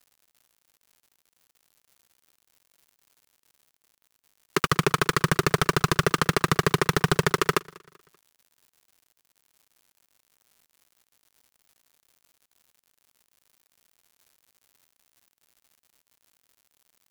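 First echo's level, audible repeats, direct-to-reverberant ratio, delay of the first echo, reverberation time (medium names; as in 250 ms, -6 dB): -24.0 dB, 2, no reverb, 193 ms, no reverb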